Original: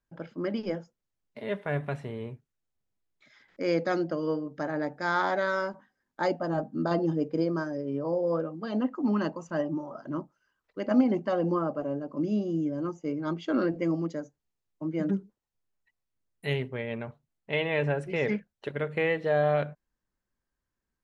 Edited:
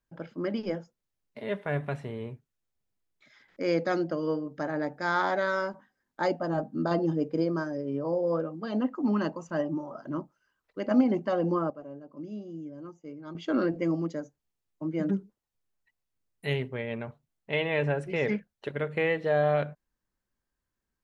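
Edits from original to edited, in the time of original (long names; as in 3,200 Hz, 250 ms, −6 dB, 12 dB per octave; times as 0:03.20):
0:11.70–0:13.35: clip gain −11 dB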